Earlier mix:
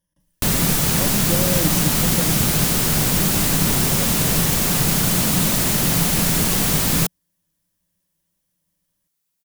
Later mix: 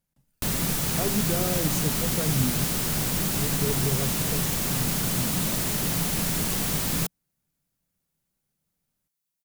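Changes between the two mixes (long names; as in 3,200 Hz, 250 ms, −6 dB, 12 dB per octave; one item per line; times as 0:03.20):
speech: remove EQ curve with evenly spaced ripples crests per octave 1.2, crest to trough 15 dB
background −8.0 dB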